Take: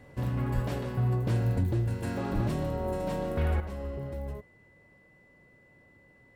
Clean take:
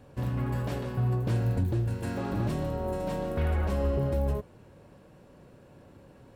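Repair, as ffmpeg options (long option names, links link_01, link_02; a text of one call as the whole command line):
ffmpeg -i in.wav -filter_complex "[0:a]bandreject=frequency=2000:width=30,asplit=3[link_01][link_02][link_03];[link_01]afade=type=out:start_time=0.54:duration=0.02[link_04];[link_02]highpass=frequency=140:width=0.5412,highpass=frequency=140:width=1.3066,afade=type=in:start_time=0.54:duration=0.02,afade=type=out:start_time=0.66:duration=0.02[link_05];[link_03]afade=type=in:start_time=0.66:duration=0.02[link_06];[link_04][link_05][link_06]amix=inputs=3:normalize=0,asplit=3[link_07][link_08][link_09];[link_07]afade=type=out:start_time=2.34:duration=0.02[link_10];[link_08]highpass=frequency=140:width=0.5412,highpass=frequency=140:width=1.3066,afade=type=in:start_time=2.34:duration=0.02,afade=type=out:start_time=2.46:duration=0.02[link_11];[link_09]afade=type=in:start_time=2.46:duration=0.02[link_12];[link_10][link_11][link_12]amix=inputs=3:normalize=0,asetnsamples=nb_out_samples=441:pad=0,asendcmd='3.6 volume volume 9dB',volume=0dB" out.wav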